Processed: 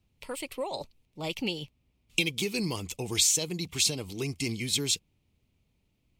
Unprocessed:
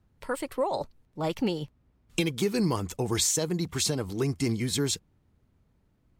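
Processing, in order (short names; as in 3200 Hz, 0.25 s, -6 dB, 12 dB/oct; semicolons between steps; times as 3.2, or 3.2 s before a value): resonant high shelf 2000 Hz +7 dB, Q 3; gain -5.5 dB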